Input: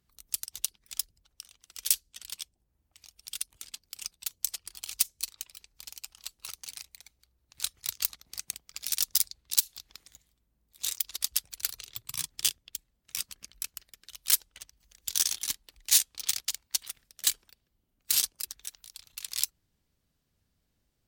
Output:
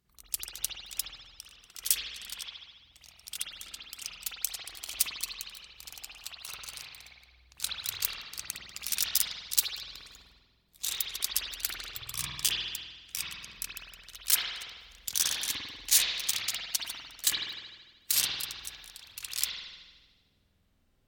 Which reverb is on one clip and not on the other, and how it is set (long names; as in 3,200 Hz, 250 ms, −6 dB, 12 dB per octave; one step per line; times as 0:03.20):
spring reverb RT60 1.3 s, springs 49 ms, chirp 30 ms, DRR −6.5 dB
level −1.5 dB